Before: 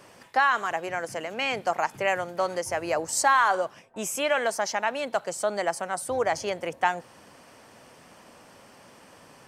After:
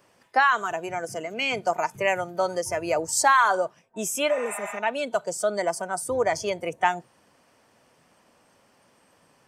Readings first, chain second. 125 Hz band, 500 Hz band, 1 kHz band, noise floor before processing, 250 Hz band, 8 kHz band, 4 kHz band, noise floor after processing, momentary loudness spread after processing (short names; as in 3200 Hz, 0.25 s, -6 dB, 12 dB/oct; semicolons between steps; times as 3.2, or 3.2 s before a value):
+2.5 dB, +2.0 dB, +1.5 dB, -53 dBFS, +2.5 dB, +2.0 dB, +1.0 dB, -62 dBFS, 10 LU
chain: spectral noise reduction 12 dB; spectral repair 4.32–4.76, 620–7100 Hz after; gain +2.5 dB